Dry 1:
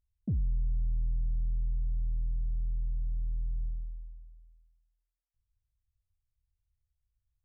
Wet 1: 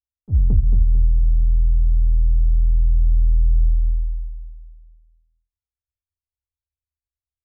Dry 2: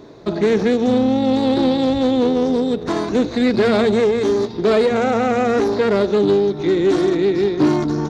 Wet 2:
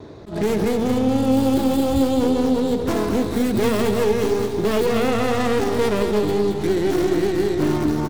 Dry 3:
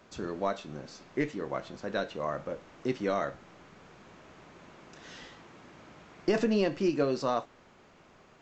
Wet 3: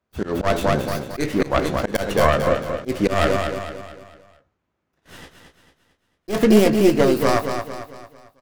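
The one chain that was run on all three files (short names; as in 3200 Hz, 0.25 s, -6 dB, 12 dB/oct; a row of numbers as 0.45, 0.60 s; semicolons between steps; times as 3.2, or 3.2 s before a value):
tracing distortion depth 0.42 ms; vocal rider within 4 dB 2 s; limiter -12.5 dBFS; bell 5600 Hz -2 dB 1.9 oct; gate -47 dBFS, range -38 dB; bell 78 Hz +13.5 dB 0.72 oct; doubler 19 ms -12 dB; on a send: feedback echo 0.224 s, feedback 43%, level -7 dB; on the sum: auto swell 0.152 s; AAC 192 kbps 44100 Hz; match loudness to -20 LUFS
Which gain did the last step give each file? +11.5, -1.0, +13.5 dB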